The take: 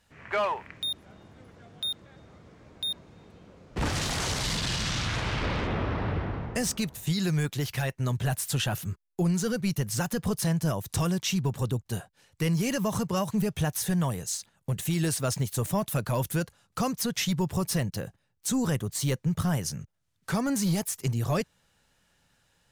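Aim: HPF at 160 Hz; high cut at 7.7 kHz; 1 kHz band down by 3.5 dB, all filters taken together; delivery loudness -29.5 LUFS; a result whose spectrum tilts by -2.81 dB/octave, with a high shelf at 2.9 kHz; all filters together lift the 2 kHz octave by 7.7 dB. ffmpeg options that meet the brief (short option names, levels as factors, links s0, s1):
-af "highpass=160,lowpass=7700,equalizer=f=1000:t=o:g=-8.5,equalizer=f=2000:t=o:g=9,highshelf=f=2900:g=8,volume=0.794"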